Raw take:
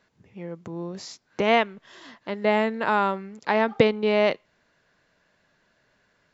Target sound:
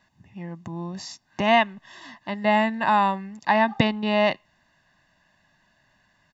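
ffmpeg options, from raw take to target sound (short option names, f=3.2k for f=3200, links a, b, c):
-af "aecho=1:1:1.1:0.82"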